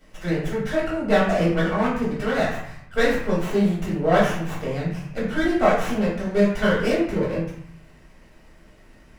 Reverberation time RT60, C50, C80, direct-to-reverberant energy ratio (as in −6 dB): 0.65 s, 3.0 dB, 6.0 dB, −8.0 dB